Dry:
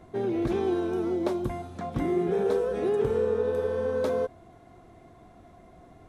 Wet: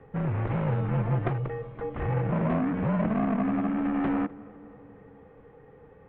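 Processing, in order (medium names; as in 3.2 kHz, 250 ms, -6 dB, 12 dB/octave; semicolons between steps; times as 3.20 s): one-sided wavefolder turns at -26 dBFS; on a send: tape echo 252 ms, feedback 71%, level -20 dB, low-pass 2 kHz; on the sum: mistuned SSB -230 Hz 300–2800 Hz; 0.88–1.28 s: comb 5.8 ms, depth 86%; trim +2.5 dB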